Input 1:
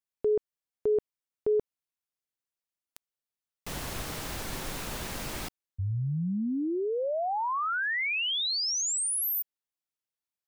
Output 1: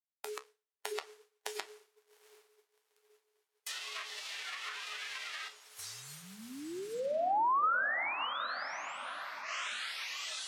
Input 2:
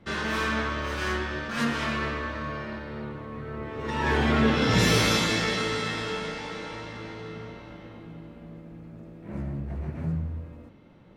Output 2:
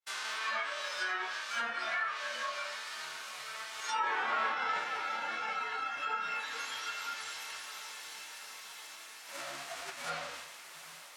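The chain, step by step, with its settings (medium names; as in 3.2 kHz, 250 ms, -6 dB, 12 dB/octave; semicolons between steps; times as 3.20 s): formants flattened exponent 0.3; high-pass 870 Hz 12 dB/octave; on a send: echo that smears into a reverb 755 ms, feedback 70%, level -9 dB; on the sum: algorithmic reverb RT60 4.5 s, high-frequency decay 0.9×, pre-delay 65 ms, DRR 16 dB; flange 1.3 Hz, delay 8.2 ms, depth 7.4 ms, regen -63%; dynamic bell 1.3 kHz, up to +5 dB, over -48 dBFS, Q 2.8; spectral noise reduction 12 dB; compression 3:1, threshold -35 dBFS; low-pass that closes with the level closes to 1.5 kHz, closed at -34.5 dBFS; expander -57 dBFS; trim +8 dB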